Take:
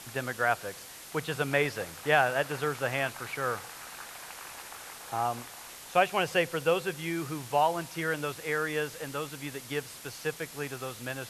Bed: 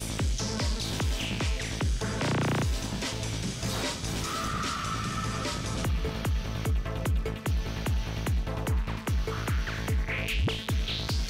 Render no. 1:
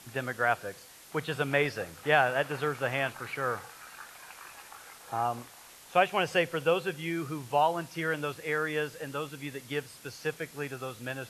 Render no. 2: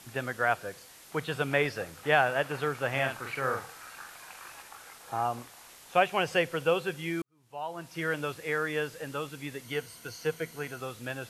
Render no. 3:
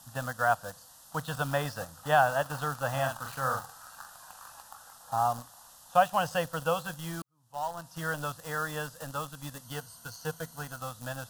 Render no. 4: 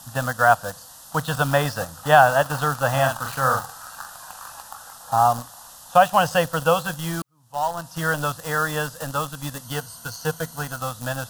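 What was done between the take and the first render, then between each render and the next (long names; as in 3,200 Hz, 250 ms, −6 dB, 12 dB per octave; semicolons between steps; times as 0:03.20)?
noise reduction from a noise print 6 dB
0:02.90–0:04.62: double-tracking delay 45 ms −5 dB; 0:07.22–0:08.03: fade in quadratic; 0:09.64–0:10.80: EQ curve with evenly spaced ripples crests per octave 1.9, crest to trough 8 dB
in parallel at −5 dB: bit reduction 6 bits; on the sum: phaser with its sweep stopped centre 930 Hz, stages 4
level +10 dB; brickwall limiter −3 dBFS, peak gain reduction 3 dB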